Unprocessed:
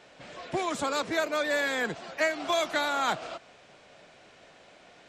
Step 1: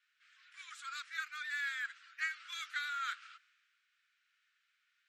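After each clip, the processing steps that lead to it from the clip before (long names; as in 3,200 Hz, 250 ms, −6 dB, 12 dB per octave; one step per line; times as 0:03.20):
Butterworth high-pass 1,300 Hz 72 dB per octave
high-shelf EQ 2,900 Hz −10 dB
multiband upward and downward expander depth 40%
level −5 dB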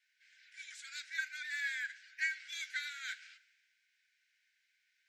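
Chebyshev high-pass with heavy ripple 1,500 Hz, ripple 6 dB
convolution reverb RT60 0.65 s, pre-delay 5 ms, DRR 12.5 dB
level +4.5 dB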